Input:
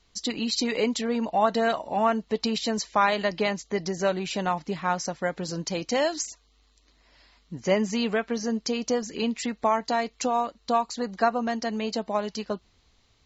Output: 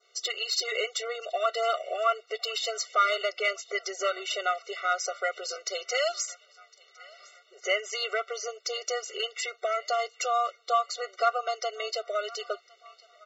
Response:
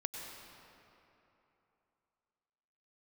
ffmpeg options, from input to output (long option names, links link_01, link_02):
-filter_complex "[0:a]adynamicequalizer=threshold=0.0112:dfrequency=2800:dqfactor=1.3:tfrequency=2800:tqfactor=1.3:attack=5:release=100:ratio=0.375:range=1.5:mode=cutabove:tftype=bell,acrossover=split=900[link_01][link_02];[link_01]acompressor=threshold=-36dB:ratio=10[link_03];[link_02]asplit=2[link_04][link_05];[link_05]adelay=1057,lowpass=frequency=4000:poles=1,volume=-21dB,asplit=2[link_06][link_07];[link_07]adelay=1057,lowpass=frequency=4000:poles=1,volume=0.52,asplit=2[link_08][link_09];[link_09]adelay=1057,lowpass=frequency=4000:poles=1,volume=0.52,asplit=2[link_10][link_11];[link_11]adelay=1057,lowpass=frequency=4000:poles=1,volume=0.52[link_12];[link_04][link_06][link_08][link_10][link_12]amix=inputs=5:normalize=0[link_13];[link_03][link_13]amix=inputs=2:normalize=0,asplit=2[link_14][link_15];[link_15]highpass=frequency=720:poles=1,volume=9dB,asoftclip=type=tanh:threshold=-13.5dB[link_16];[link_14][link_16]amix=inputs=2:normalize=0,lowpass=frequency=3500:poles=1,volume=-6dB,afftfilt=real='re*eq(mod(floor(b*sr/1024/380),2),1)':imag='im*eq(mod(floor(b*sr/1024/380),2),1)':win_size=1024:overlap=0.75,volume=4dB"